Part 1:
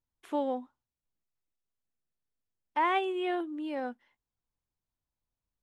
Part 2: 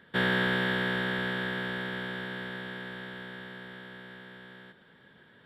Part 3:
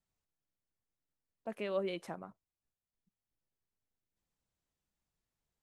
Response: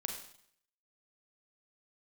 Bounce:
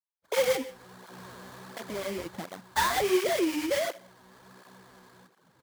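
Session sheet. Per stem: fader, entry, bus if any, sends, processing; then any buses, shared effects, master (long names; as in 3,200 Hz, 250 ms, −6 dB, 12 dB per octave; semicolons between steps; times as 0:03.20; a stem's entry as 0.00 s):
0.0 dB, 0.00 s, bus A, send −6.5 dB, three sine waves on the formant tracks; parametric band 540 Hz +14.5 dB 0.52 octaves
−4.5 dB, 0.55 s, no bus, send −14 dB, brickwall limiter −33 dBFS, peak gain reduction 15.5 dB; automatic ducking −14 dB, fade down 0.80 s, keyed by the first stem
−0.5 dB, 0.30 s, bus A, no send, brickwall limiter −35 dBFS, peak gain reduction 11 dB
bus A: 0.0 dB, leveller curve on the samples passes 3; downward compressor, threshold −25 dBFS, peak gain reduction 7 dB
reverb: on, RT60 0.65 s, pre-delay 33 ms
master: sample-rate reduction 2,700 Hz, jitter 20%; through-zero flanger with one copy inverted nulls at 1.4 Hz, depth 7.5 ms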